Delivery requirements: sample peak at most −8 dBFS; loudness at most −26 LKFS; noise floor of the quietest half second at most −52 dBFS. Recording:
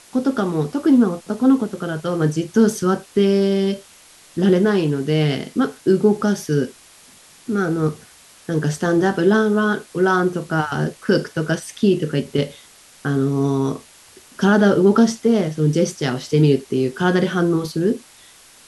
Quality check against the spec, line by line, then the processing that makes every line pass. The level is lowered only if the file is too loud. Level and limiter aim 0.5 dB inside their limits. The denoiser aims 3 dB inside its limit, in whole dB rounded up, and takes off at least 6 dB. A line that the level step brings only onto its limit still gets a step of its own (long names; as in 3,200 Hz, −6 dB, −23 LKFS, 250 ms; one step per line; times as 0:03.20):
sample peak −5.0 dBFS: out of spec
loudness −19.0 LKFS: out of spec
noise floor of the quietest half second −48 dBFS: out of spec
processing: level −7.5 dB